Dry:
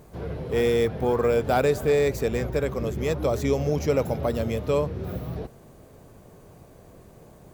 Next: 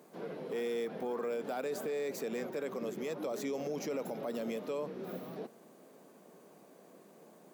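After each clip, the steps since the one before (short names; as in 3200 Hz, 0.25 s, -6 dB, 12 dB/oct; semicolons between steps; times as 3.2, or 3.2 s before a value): steep high-pass 190 Hz 36 dB/oct; limiter -23 dBFS, peak gain reduction 11.5 dB; gain -6 dB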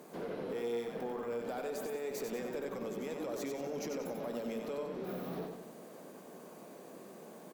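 compressor 4:1, threshold -43 dBFS, peak gain reduction 9 dB; tube stage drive 38 dB, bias 0.25; feedback echo 93 ms, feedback 44%, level -5 dB; gain +6 dB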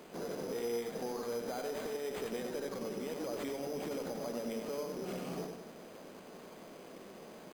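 careless resampling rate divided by 8×, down none, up hold; requantised 10-bit, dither none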